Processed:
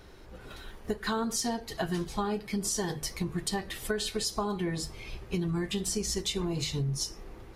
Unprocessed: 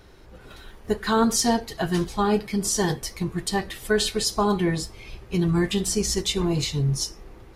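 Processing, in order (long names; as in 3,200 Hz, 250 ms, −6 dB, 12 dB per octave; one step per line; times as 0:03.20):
mains-hum notches 50/100/150 Hz
downward compressor, threshold −27 dBFS, peak gain reduction 11.5 dB
level −1 dB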